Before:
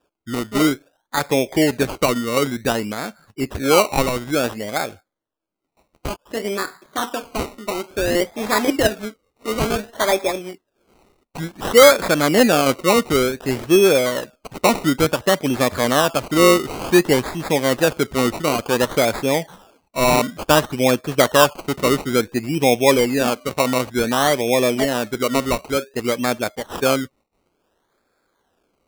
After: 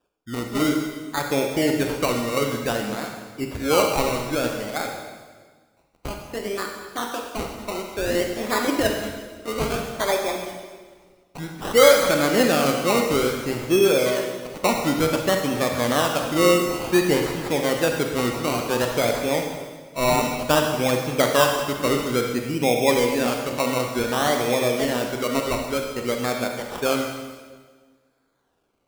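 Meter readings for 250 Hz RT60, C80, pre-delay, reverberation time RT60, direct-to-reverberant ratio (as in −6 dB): 1.7 s, 5.5 dB, 32 ms, 1.5 s, 2.5 dB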